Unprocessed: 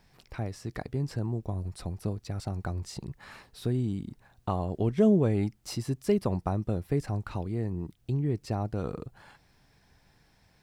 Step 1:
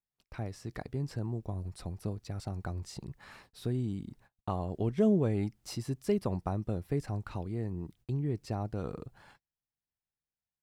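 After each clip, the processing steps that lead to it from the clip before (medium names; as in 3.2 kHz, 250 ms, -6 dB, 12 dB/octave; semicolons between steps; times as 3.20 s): gate -54 dBFS, range -34 dB; trim -4 dB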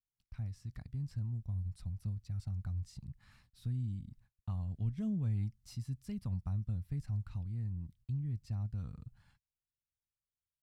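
FFT filter 100 Hz 0 dB, 250 Hz -12 dB, 370 Hz -29 dB, 1.2 kHz -17 dB, 4.5 kHz -12 dB; trim +1 dB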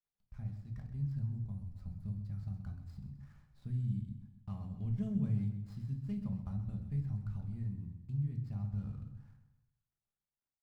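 median filter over 15 samples; on a send: feedback delay 129 ms, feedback 46%, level -11.5 dB; on the sum: simulated room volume 360 m³, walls furnished, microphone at 1.3 m; trim -2.5 dB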